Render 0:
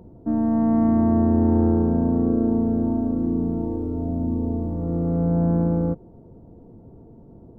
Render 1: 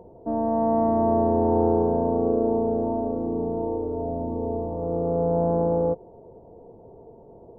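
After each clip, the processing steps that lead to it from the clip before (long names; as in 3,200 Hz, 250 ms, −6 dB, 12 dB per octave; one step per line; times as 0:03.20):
flat-topped bell 640 Hz +14.5 dB
level −7.5 dB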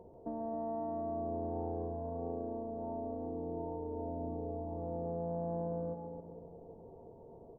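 double-tracking delay 13 ms −12 dB
downward compressor 4 to 1, threshold −31 dBFS, peak gain reduction 12 dB
echo with a time of its own for lows and highs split 620 Hz, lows 270 ms, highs 139 ms, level −5.5 dB
level −8 dB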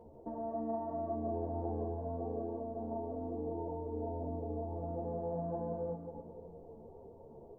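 string-ensemble chorus
level +3.5 dB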